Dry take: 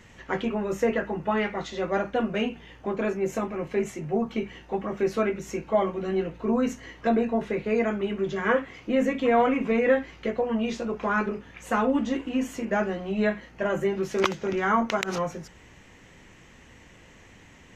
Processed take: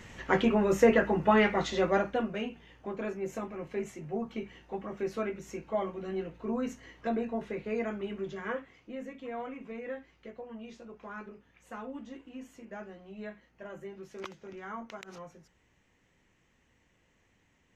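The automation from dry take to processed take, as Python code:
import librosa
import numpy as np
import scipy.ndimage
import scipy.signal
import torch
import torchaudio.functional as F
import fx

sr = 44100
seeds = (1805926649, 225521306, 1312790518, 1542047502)

y = fx.gain(x, sr, db=fx.line((1.77, 2.5), (2.4, -8.5), (8.18, -8.5), (9.02, -18.0)))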